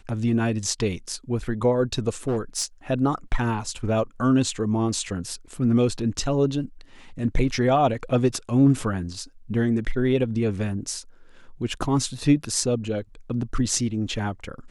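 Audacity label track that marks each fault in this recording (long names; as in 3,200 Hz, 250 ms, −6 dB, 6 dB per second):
2.270000	2.650000	clipping −19.5 dBFS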